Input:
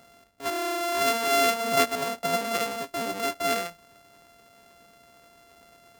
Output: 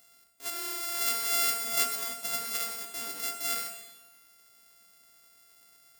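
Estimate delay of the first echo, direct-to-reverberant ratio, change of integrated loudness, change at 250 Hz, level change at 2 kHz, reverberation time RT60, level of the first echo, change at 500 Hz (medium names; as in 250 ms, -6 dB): no echo, 5.0 dB, -3.0 dB, -16.5 dB, -7.5 dB, 1.2 s, no echo, -17.5 dB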